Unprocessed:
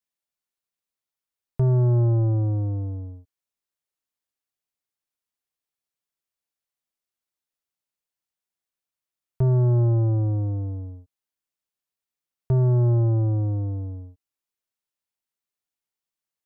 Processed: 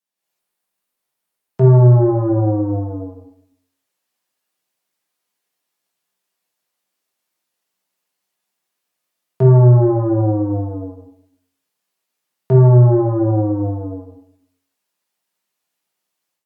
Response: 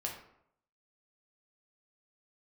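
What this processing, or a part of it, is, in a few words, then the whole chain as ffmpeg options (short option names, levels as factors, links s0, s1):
far-field microphone of a smart speaker: -filter_complex "[1:a]atrim=start_sample=2205[s0];[0:a][s0]afir=irnorm=-1:irlink=0,highpass=f=150:w=0.5412,highpass=f=150:w=1.3066,dynaudnorm=f=150:g=3:m=3.55,volume=1.26" -ar 48000 -c:a libopus -b:a 48k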